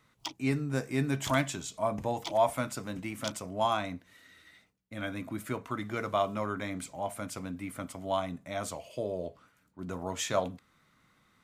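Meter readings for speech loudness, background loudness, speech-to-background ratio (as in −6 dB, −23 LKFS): −33.5 LKFS, −43.5 LKFS, 10.0 dB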